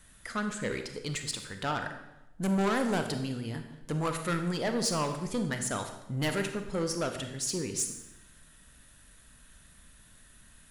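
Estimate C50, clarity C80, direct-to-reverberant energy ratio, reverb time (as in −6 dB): 7.5 dB, 10.0 dB, 6.0 dB, 0.95 s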